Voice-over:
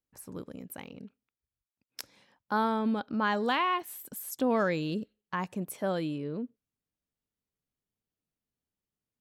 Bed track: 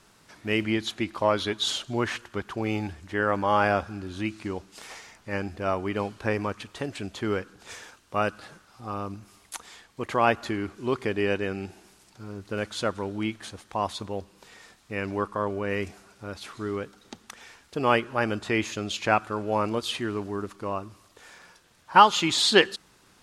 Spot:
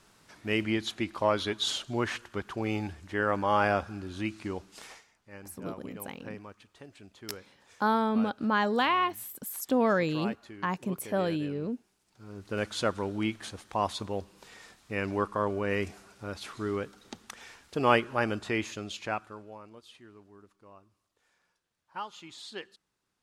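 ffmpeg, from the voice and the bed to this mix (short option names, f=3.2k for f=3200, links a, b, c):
-filter_complex "[0:a]adelay=5300,volume=2dB[a];[1:a]volume=13dB,afade=t=out:st=4.83:d=0.22:silence=0.199526,afade=t=in:st=12.05:d=0.57:silence=0.158489,afade=t=out:st=17.93:d=1.66:silence=0.0794328[b];[a][b]amix=inputs=2:normalize=0"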